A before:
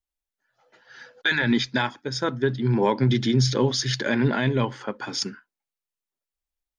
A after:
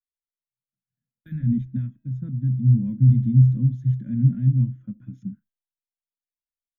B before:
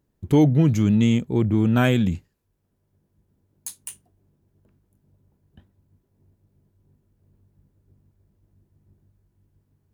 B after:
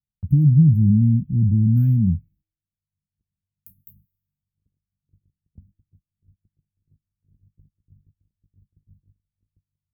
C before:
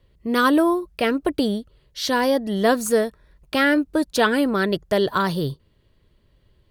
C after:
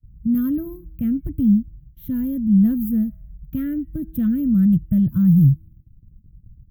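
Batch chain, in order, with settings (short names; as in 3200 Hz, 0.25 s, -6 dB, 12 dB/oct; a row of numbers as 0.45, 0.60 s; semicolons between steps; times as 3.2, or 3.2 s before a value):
inverse Chebyshev band-stop 380–9600 Hz, stop band 40 dB; gate -59 dBFS, range -26 dB; high shelf 2300 Hz -7 dB; resonator 320 Hz, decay 1 s, mix 40%; normalise peaks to -6 dBFS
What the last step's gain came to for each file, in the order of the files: +12.0, +10.5, +19.5 dB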